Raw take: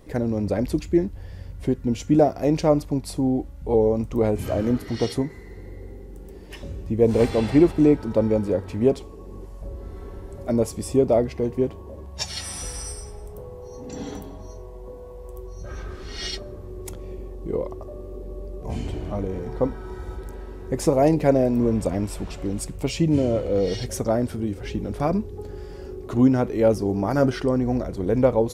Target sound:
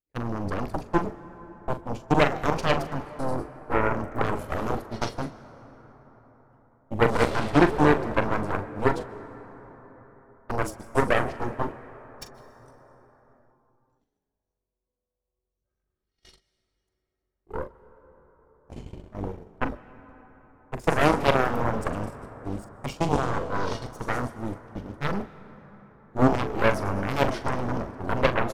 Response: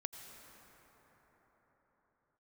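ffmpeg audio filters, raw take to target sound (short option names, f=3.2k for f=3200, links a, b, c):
-filter_complex "[0:a]asplit=8[a][b][c][d][e][f][g][h];[b]adelay=106,afreqshift=87,volume=-13.5dB[i];[c]adelay=212,afreqshift=174,volume=-17.5dB[j];[d]adelay=318,afreqshift=261,volume=-21.5dB[k];[e]adelay=424,afreqshift=348,volume=-25.5dB[l];[f]adelay=530,afreqshift=435,volume=-29.6dB[m];[g]adelay=636,afreqshift=522,volume=-33.6dB[n];[h]adelay=742,afreqshift=609,volume=-37.6dB[o];[a][i][j][k][l][m][n][o]amix=inputs=8:normalize=0,aeval=exprs='0.531*(cos(1*acos(clip(val(0)/0.531,-1,1)))-cos(1*PI/2))+0.075*(cos(3*acos(clip(val(0)/0.531,-1,1)))-cos(3*PI/2))+0.168*(cos(4*acos(clip(val(0)/0.531,-1,1)))-cos(4*PI/2))+0.168*(cos(6*acos(clip(val(0)/0.531,-1,1)))-cos(6*PI/2))+0.119*(cos(7*acos(clip(val(0)/0.531,-1,1)))-cos(7*PI/2))':c=same,agate=range=-47dB:threshold=-26dB:ratio=16:detection=peak,asplit=2[p][q];[1:a]atrim=start_sample=2205,adelay=41[r];[q][r]afir=irnorm=-1:irlink=0,volume=-8dB[s];[p][s]amix=inputs=2:normalize=0,volume=-3dB"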